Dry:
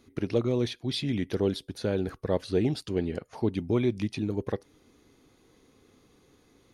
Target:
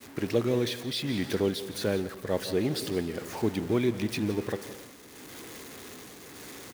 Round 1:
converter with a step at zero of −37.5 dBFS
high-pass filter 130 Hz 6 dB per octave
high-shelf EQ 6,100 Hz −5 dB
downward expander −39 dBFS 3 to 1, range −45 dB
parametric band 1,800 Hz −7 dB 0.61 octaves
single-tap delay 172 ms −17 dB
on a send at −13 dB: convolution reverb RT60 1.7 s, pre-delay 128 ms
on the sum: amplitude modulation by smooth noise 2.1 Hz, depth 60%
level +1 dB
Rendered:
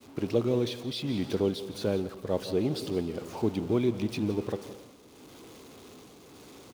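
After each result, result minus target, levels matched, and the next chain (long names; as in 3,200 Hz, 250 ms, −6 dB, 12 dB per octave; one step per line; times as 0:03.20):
2,000 Hz band −6.5 dB; 8,000 Hz band −6.5 dB
converter with a step at zero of −37.5 dBFS
high-pass filter 130 Hz 6 dB per octave
high-shelf EQ 6,100 Hz −5 dB
downward expander −39 dBFS 3 to 1, range −45 dB
parametric band 1,800 Hz +4 dB 0.61 octaves
single-tap delay 172 ms −17 dB
on a send at −13 dB: convolution reverb RT60 1.7 s, pre-delay 128 ms
on the sum: amplitude modulation by smooth noise 2.1 Hz, depth 60%
level +1 dB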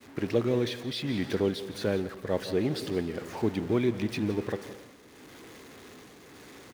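8,000 Hz band −6.5 dB
converter with a step at zero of −37.5 dBFS
high-pass filter 130 Hz 6 dB per octave
high-shelf EQ 6,100 Hz +5.5 dB
downward expander −39 dBFS 3 to 1, range −45 dB
parametric band 1,800 Hz +4 dB 0.61 octaves
single-tap delay 172 ms −17 dB
on a send at −13 dB: convolution reverb RT60 1.7 s, pre-delay 128 ms
on the sum: amplitude modulation by smooth noise 2.1 Hz, depth 60%
level +1 dB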